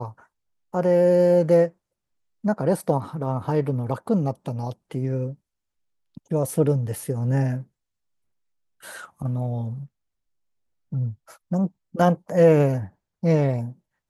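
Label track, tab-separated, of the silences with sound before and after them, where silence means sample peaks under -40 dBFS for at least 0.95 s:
7.630000	8.830000	silence
9.860000	10.920000	silence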